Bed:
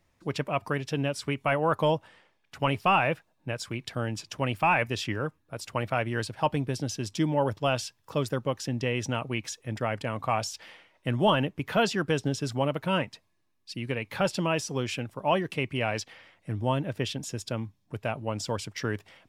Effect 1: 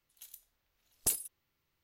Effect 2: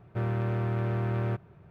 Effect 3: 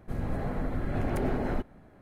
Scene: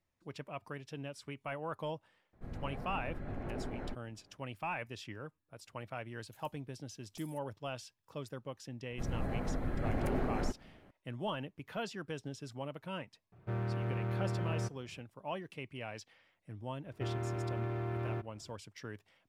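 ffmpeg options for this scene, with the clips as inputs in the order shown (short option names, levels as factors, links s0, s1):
-filter_complex "[3:a]asplit=2[s0][s1];[2:a]asplit=2[s2][s3];[0:a]volume=0.178[s4];[s0]lowpass=f=3800:p=1[s5];[1:a]acompressor=threshold=0.00891:ratio=6:attack=3.2:release=140:knee=1:detection=peak[s6];[s3]aecho=1:1:2.9:0.69[s7];[s5]atrim=end=2.01,asetpts=PTS-STARTPTS,volume=0.266,afade=t=in:d=0.004:c=hsin,afade=t=out:st=2.006:d=0.004:c=hsin,adelay=2330[s8];[s6]atrim=end=1.83,asetpts=PTS-STARTPTS,volume=0.224,afade=t=in:d=0.004:c=hsin,afade=t=out:st=1.826:d=0.004:c=hsin,adelay=6110[s9];[s1]atrim=end=2.01,asetpts=PTS-STARTPTS,volume=0.596,afade=t=in:d=0.004:c=hsin,afade=t=out:st=2.006:d=0.004:c=hsin,adelay=392490S[s10];[s2]atrim=end=1.7,asetpts=PTS-STARTPTS,volume=0.473,afade=t=in:d=0.004:c=hsin,afade=t=out:st=1.696:d=0.004:c=hsin,adelay=587412S[s11];[s7]atrim=end=1.7,asetpts=PTS-STARTPTS,volume=0.398,afade=t=in:d=0.004:c=hsin,afade=t=out:st=1.696:d=0.004:c=hsin,adelay=16850[s12];[s4][s8][s9][s10][s11][s12]amix=inputs=6:normalize=0"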